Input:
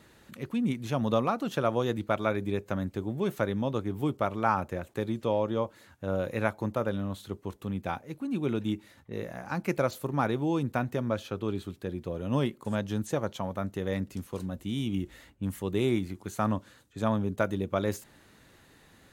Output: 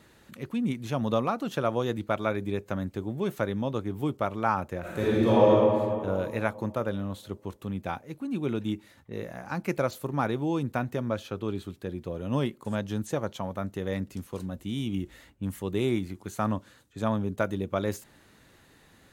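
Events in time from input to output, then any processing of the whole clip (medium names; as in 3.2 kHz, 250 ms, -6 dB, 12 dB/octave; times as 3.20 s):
4.80–5.48 s: reverb throw, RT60 2.5 s, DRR -9.5 dB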